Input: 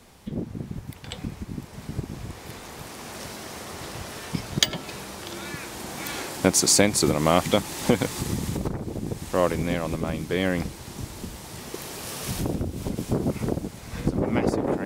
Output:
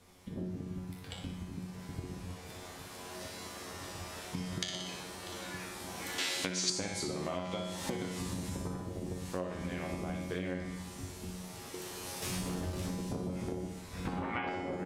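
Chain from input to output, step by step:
0:12.22–0:12.91: log-companded quantiser 2 bits
0:14.05–0:14.50: flat-topped bell 1,700 Hz +14 dB 2.5 octaves
tuned comb filter 91 Hz, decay 0.61 s, harmonics all, mix 90%
treble cut that deepens with the level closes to 2,800 Hz, closed at −21 dBFS
repeating echo 60 ms, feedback 56%, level −7 dB
downward compressor 8 to 1, threshold −36 dBFS, peak gain reduction 13 dB
0:06.18–0:06.70: meter weighting curve D
level +3 dB

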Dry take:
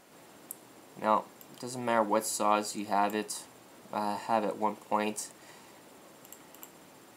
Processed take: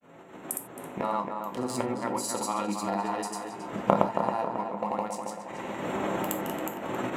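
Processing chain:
adaptive Wiener filter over 9 samples
camcorder AGC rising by 38 dB per second
granular cloud, pitch spread up and down by 0 semitones
on a send: tape delay 272 ms, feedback 56%, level −5 dB, low-pass 2,700 Hz
on the sum: reverb whose tail is shaped and stops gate 110 ms falling, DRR 6 dB
level −4 dB

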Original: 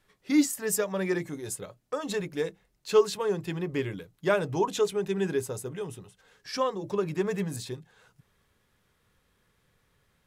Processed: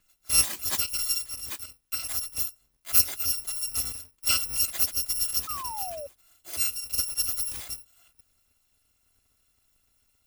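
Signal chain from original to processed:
samples in bit-reversed order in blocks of 256 samples
sound drawn into the spectrogram fall, 0:05.47–0:06.07, 550–1,300 Hz −37 dBFS

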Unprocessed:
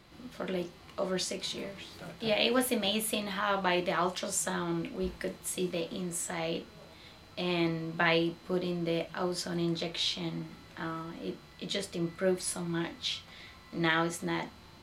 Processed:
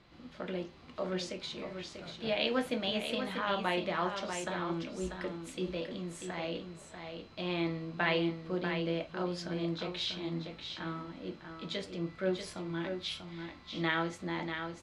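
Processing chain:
low-pass filter 4,800 Hz 12 dB per octave
on a send: single-tap delay 641 ms −7 dB
on the sum: level −3.5 dB

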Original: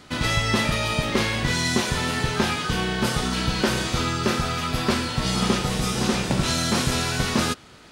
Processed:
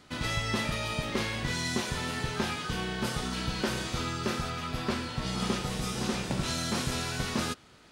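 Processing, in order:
0:04.50–0:05.40: high-shelf EQ 5,400 Hz −5.5 dB
level −8.5 dB

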